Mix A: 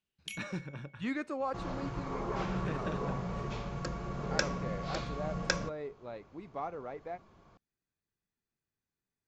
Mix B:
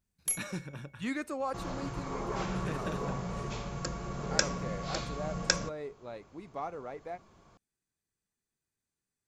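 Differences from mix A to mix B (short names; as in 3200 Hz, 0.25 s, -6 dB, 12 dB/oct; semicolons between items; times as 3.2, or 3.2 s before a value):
first sound: remove resonant high-pass 2800 Hz, resonance Q 5.1; master: remove air absorption 120 m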